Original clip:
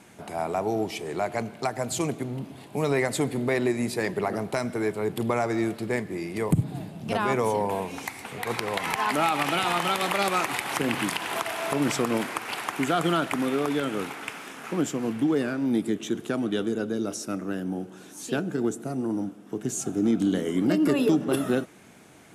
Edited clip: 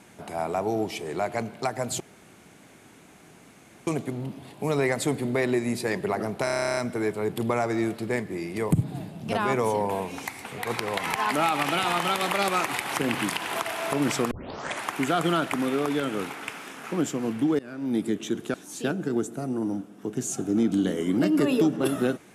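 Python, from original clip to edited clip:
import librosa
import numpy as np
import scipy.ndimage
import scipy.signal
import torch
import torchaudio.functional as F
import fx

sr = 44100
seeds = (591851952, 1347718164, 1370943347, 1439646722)

y = fx.edit(x, sr, fx.insert_room_tone(at_s=2.0, length_s=1.87),
    fx.stutter(start_s=4.57, slice_s=0.03, count=12),
    fx.tape_start(start_s=12.11, length_s=0.55),
    fx.fade_in_from(start_s=15.39, length_s=0.43, floor_db=-23.0),
    fx.cut(start_s=16.34, length_s=1.68), tone=tone)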